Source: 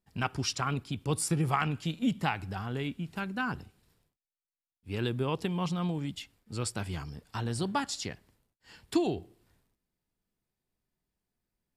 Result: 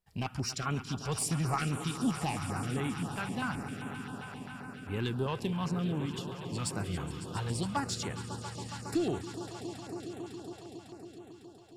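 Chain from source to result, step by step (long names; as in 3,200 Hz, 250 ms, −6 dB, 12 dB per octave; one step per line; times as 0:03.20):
echo that builds up and dies away 138 ms, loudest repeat 5, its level −14.5 dB
soft clipping −21.5 dBFS, distortion −18 dB
notch on a step sequencer 7.6 Hz 270–5,000 Hz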